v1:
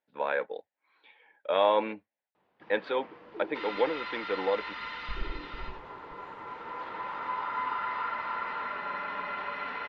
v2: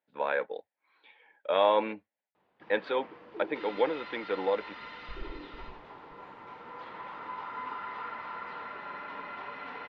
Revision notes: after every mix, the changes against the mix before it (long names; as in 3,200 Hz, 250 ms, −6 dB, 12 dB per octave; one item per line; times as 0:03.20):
second sound −6.5 dB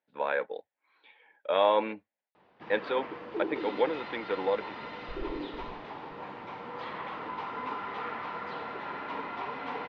first sound +9.0 dB